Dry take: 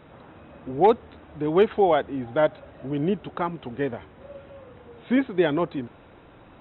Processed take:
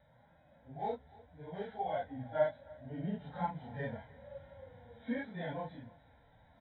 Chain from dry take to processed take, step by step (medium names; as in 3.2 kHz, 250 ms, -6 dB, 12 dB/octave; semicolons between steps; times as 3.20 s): phase randomisation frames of 100 ms; gain riding within 4 dB 0.5 s; harmonic-percussive split percussive -12 dB; static phaser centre 1.8 kHz, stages 8; on a send: delay 301 ms -22.5 dB; on the sum: trim -7 dB